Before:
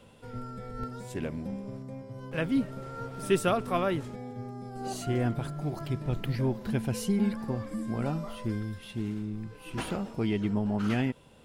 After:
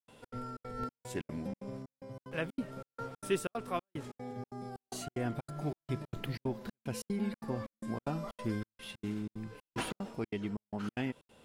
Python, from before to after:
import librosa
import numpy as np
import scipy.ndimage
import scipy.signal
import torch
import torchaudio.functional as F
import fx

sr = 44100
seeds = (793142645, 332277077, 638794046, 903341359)

y = fx.low_shelf(x, sr, hz=180.0, db=-8.0)
y = fx.rider(y, sr, range_db=3, speed_s=0.5)
y = fx.step_gate(y, sr, bpm=186, pattern='.xx.xxx.xxx.', floor_db=-60.0, edge_ms=4.5)
y = F.gain(torch.from_numpy(y), -2.5).numpy()